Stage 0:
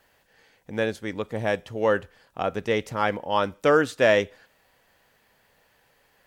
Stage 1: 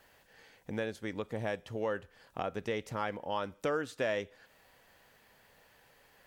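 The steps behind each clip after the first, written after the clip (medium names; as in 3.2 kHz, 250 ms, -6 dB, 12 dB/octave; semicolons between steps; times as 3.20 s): compression 2.5:1, threshold -37 dBFS, peak gain reduction 14.5 dB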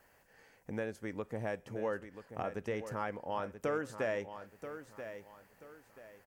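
peaking EQ 3.6 kHz -11 dB 0.67 oct; on a send: feedback delay 983 ms, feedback 31%, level -10.5 dB; on the sum: trim -2 dB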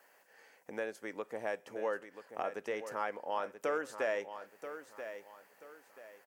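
high-pass 400 Hz 12 dB/octave; trim +2 dB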